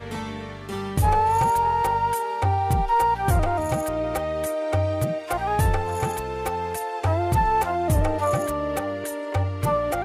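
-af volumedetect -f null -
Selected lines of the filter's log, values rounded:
mean_volume: -23.1 dB
max_volume: -11.4 dB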